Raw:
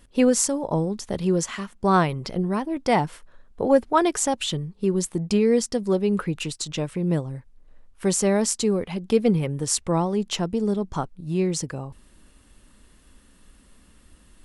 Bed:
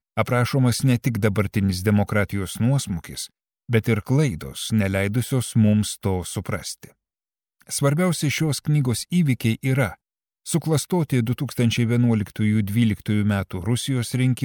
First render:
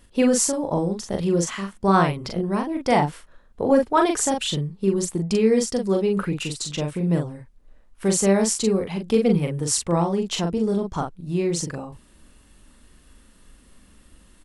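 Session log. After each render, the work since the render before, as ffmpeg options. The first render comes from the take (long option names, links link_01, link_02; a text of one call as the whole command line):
ffmpeg -i in.wav -filter_complex "[0:a]asplit=2[link_01][link_02];[link_02]adelay=41,volume=-4dB[link_03];[link_01][link_03]amix=inputs=2:normalize=0" out.wav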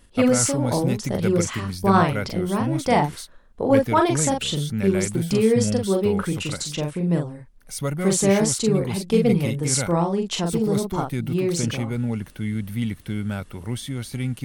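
ffmpeg -i in.wav -i bed.wav -filter_complex "[1:a]volume=-6.5dB[link_01];[0:a][link_01]amix=inputs=2:normalize=0" out.wav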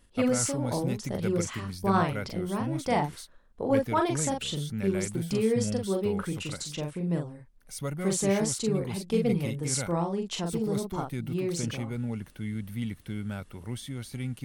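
ffmpeg -i in.wav -af "volume=-7.5dB" out.wav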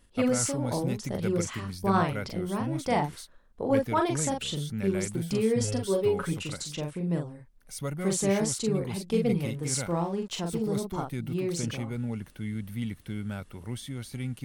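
ffmpeg -i in.wav -filter_complex "[0:a]asettb=1/sr,asplit=3[link_01][link_02][link_03];[link_01]atrim=end=5.604[link_04];[link_02]atrim=start=5.6:end=6.34,asetpts=PTS-STARTPTS,afade=type=in:duration=0.004:curve=qsin,afade=type=out:start_time=0.736:duration=0.004:curve=qsin,aecho=1:1:7.2:0.87,atrim=end_sample=32634[link_05];[link_03]atrim=start=6.336[link_06];[link_04][link_05]acrossfade=duration=0.004:curve1=hsin:curve2=qsin[link_07];[link_07][link_06]acrossfade=duration=0.004:curve1=qsin:curve2=hsin,asettb=1/sr,asplit=3[link_08][link_09][link_10];[link_08]atrim=end=9.414[link_11];[link_09]atrim=start=9.41:end=10.61,asetpts=PTS-STARTPTS,afade=type=in:duration=0.004:curve=qsin,afade=type=out:start_time=1.196:duration=0.004:curve=qsin,aeval=exprs='sgn(val(0))*max(abs(val(0))-0.00224,0)':channel_layout=same[link_12];[link_10]atrim=start=10.606[link_13];[link_11][link_12]acrossfade=duration=0.004:curve1=hsin:curve2=qsin[link_14];[link_14][link_13]acrossfade=duration=0.004:curve1=qsin:curve2=hsin" out.wav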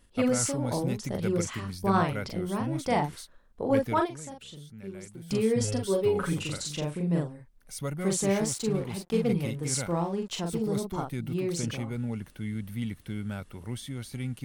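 ffmpeg -i in.wav -filter_complex "[0:a]asettb=1/sr,asplit=3[link_01][link_02][link_03];[link_01]atrim=end=6.114[link_04];[link_02]atrim=start=6.11:end=7.28,asetpts=PTS-STARTPTS,afade=type=in:duration=0.004:curve=qsin,afade=type=out:start_time=1.166:duration=0.004:curve=qsin,asplit=2[link_05][link_06];[link_06]adelay=41,volume=-7dB[link_07];[link_05][link_07]amix=inputs=2:normalize=0,atrim=end_sample=51597[link_08];[link_03]atrim=start=7.276[link_09];[link_04][link_08]acrossfade=duration=0.004:curve1=hsin:curve2=qsin[link_10];[link_10][link_09]acrossfade=duration=0.004:curve1=qsin:curve2=hsin,asettb=1/sr,asplit=3[link_11][link_12][link_13];[link_11]atrim=end=8.234[link_14];[link_12]atrim=start=8.23:end=9.33,asetpts=PTS-STARTPTS,afade=type=in:duration=0.004:curve=qsin,afade=type=out:start_time=1.096:duration=0.004:curve=qsin,aeval=exprs='sgn(val(0))*max(abs(val(0))-0.00562,0)':channel_layout=same[link_15];[link_13]atrim=start=9.326[link_16];[link_14][link_15]acrossfade=duration=0.004:curve1=hsin:curve2=qsin[link_17];[link_17][link_16]acrossfade=duration=0.004:curve1=qsin:curve2=hsin,asplit=3[link_18][link_19][link_20];[link_18]atrim=end=4.3,asetpts=PTS-STARTPTS,afade=type=out:start_time=4.04:duration=0.26:curve=exp:silence=0.223872[link_21];[link_19]atrim=start=4.3:end=5.05,asetpts=PTS-STARTPTS,volume=-13dB[link_22];[link_20]atrim=start=5.05,asetpts=PTS-STARTPTS,afade=type=in:duration=0.26:curve=exp:silence=0.223872[link_23];[link_21][link_22][link_23]concat=n=3:v=0:a=1" out.wav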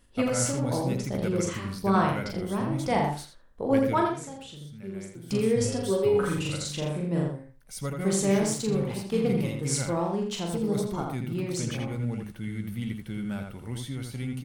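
ffmpeg -i in.wav -filter_complex "[0:a]asplit=2[link_01][link_02];[link_02]adelay=15,volume=-12dB[link_03];[link_01][link_03]amix=inputs=2:normalize=0,asplit=2[link_04][link_05];[link_05]adelay=82,lowpass=frequency=2900:poles=1,volume=-3.5dB,asplit=2[link_06][link_07];[link_07]adelay=82,lowpass=frequency=2900:poles=1,volume=0.18,asplit=2[link_08][link_09];[link_09]adelay=82,lowpass=frequency=2900:poles=1,volume=0.18[link_10];[link_06][link_08][link_10]amix=inputs=3:normalize=0[link_11];[link_04][link_11]amix=inputs=2:normalize=0" out.wav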